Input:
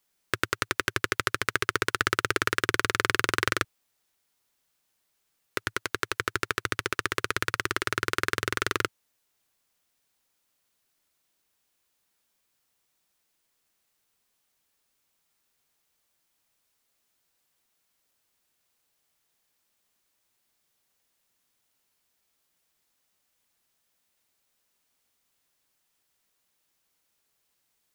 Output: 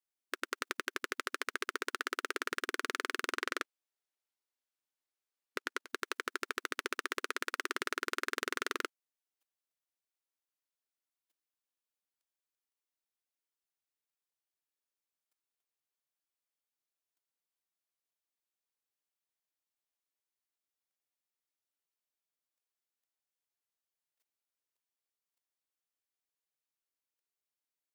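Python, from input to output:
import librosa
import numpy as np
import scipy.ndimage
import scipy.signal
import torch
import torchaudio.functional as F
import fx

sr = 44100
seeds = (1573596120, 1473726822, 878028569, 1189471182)

y = fx.high_shelf(x, sr, hz=9600.0, db=-6.0, at=(3.33, 5.85))
y = fx.level_steps(y, sr, step_db=15)
y = fx.brickwall_highpass(y, sr, low_hz=250.0)
y = y * librosa.db_to_amplitude(-5.5)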